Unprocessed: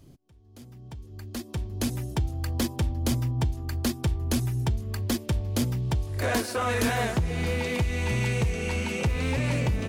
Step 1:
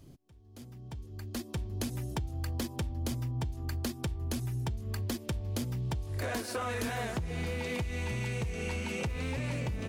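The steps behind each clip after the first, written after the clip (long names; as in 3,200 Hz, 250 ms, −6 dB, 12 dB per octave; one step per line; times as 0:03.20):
downward compressor, threshold −30 dBFS, peak gain reduction 8.5 dB
level −1.5 dB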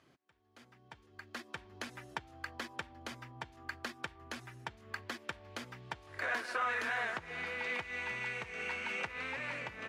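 resonant band-pass 1,600 Hz, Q 1.6
level +6.5 dB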